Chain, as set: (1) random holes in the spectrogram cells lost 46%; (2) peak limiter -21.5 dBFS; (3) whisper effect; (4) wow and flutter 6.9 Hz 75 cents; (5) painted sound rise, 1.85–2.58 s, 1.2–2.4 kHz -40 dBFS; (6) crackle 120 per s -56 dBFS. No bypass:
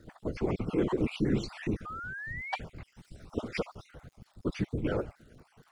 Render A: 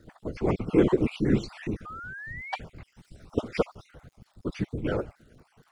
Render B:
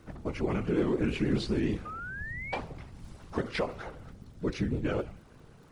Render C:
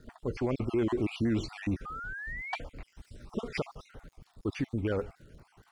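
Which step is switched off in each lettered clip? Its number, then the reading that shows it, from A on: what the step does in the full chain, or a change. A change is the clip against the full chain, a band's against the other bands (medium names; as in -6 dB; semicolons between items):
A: 2, crest factor change +4.0 dB; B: 1, crest factor change -2.0 dB; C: 3, crest factor change -5.0 dB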